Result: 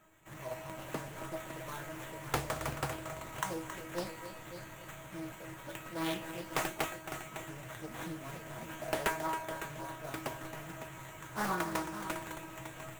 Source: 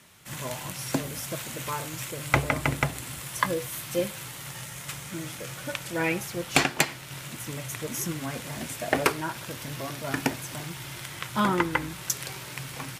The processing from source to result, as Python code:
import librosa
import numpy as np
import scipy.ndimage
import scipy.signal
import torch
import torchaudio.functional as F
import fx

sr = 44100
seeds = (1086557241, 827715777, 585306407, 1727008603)

p1 = fx.peak_eq(x, sr, hz=280.0, db=-10.0, octaves=0.5)
p2 = p1 + 10.0 ** (-10.5 / 20.0) * np.pad(p1, (int(271 * sr / 1000.0), 0))[:len(p1)]
p3 = fx.sample_hold(p2, sr, seeds[0], rate_hz=5000.0, jitter_pct=0)
p4 = fx.peak_eq(p3, sr, hz=3500.0, db=-8.0, octaves=1.8)
p5 = fx.comb_fb(p4, sr, f0_hz=320.0, decay_s=0.37, harmonics='all', damping=0.0, mix_pct=90)
p6 = p5 + fx.echo_single(p5, sr, ms=556, db=-10.0, dry=0)
p7 = fx.doppler_dist(p6, sr, depth_ms=0.94)
y = p7 * 10.0 ** (7.0 / 20.0)